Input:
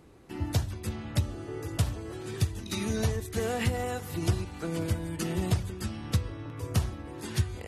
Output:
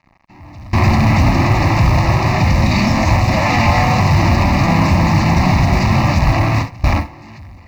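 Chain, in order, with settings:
fuzz pedal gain 54 dB, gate −50 dBFS
harmonic generator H 5 −10 dB, 6 −45 dB, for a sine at −10 dBFS
low-pass filter 2,800 Hz 12 dB per octave
delay with pitch and tempo change per echo 481 ms, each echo +3 semitones, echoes 3
automatic gain control gain up to 16.5 dB
noise gate with hold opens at −3 dBFS
phaser with its sweep stopped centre 2,200 Hz, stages 8
noise that follows the level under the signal 35 dB
level −1 dB

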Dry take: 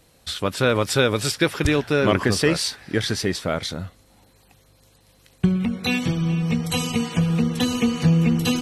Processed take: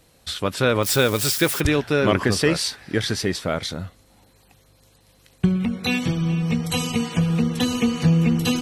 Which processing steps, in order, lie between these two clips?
0:00.83–0:01.61: spike at every zero crossing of −20 dBFS

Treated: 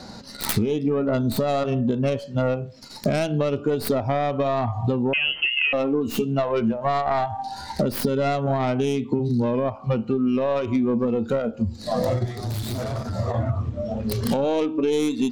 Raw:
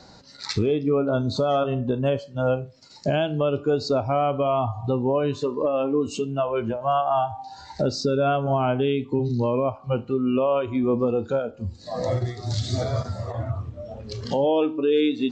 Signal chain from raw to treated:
stylus tracing distortion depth 0.33 ms
parametric band 220 Hz +10.5 dB 0.25 octaves
downward compressor, threshold −27 dBFS, peak gain reduction 12 dB
0:05.13–0:05.73: voice inversion scrambler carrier 3,100 Hz
0:12.25–0:13.14: tube saturation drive 31 dB, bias 0.4
level +7.5 dB

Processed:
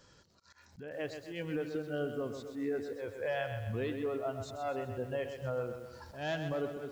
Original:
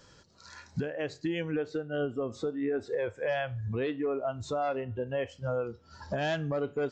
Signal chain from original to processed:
volume swells 176 ms
feedback echo at a low word length 128 ms, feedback 55%, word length 9 bits, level −7.5 dB
level −4.5 dB

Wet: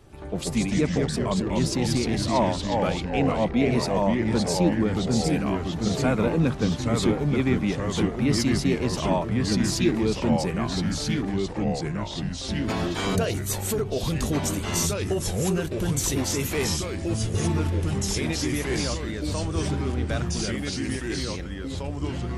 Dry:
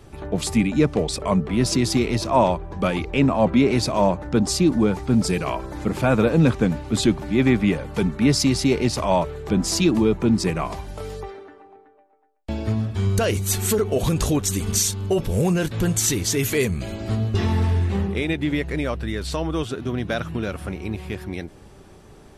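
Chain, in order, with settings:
0:12.68–0:13.15: ceiling on every frequency bin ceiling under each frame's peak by 28 dB
delay with pitch and tempo change per echo 93 ms, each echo −2 semitones, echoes 3
level −6 dB

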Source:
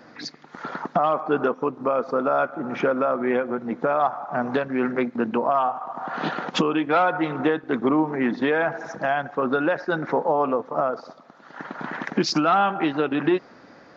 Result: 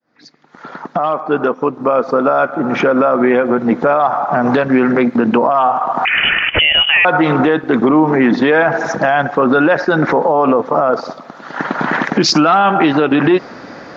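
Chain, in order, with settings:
fade in at the beginning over 3.87 s
0:06.05–0:07.05: voice inversion scrambler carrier 3,200 Hz
boost into a limiter +18.5 dB
level −2.5 dB

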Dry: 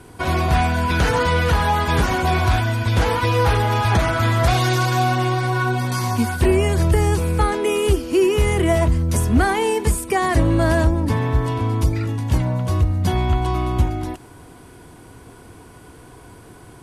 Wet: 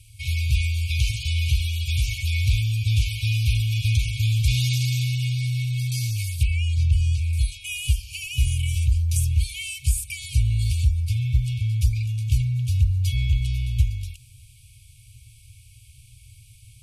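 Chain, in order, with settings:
0:06.43–0:07.33: Bessel low-pass filter 4,200 Hz, order 2
brick-wall band-stop 130–2,200 Hz
dynamic equaliser 220 Hz, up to +5 dB, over −47 dBFS, Q 3.3
level −1.5 dB

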